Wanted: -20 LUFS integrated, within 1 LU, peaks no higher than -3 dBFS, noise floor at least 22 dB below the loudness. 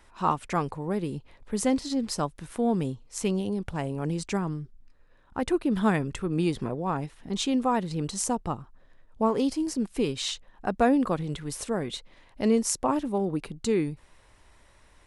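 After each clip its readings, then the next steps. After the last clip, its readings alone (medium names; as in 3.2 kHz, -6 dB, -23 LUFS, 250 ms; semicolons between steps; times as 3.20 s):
loudness -28.5 LUFS; peak level -9.5 dBFS; loudness target -20.0 LUFS
-> trim +8.5 dB; peak limiter -3 dBFS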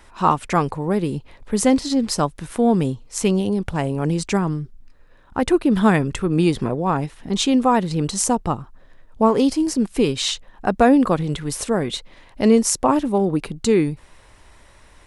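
loudness -20.0 LUFS; peak level -3.0 dBFS; noise floor -49 dBFS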